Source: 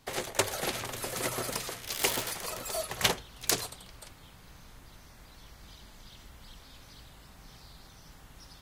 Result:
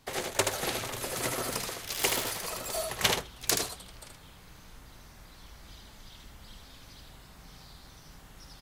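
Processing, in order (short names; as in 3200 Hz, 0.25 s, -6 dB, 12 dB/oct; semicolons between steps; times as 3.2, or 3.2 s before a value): echo 77 ms -5 dB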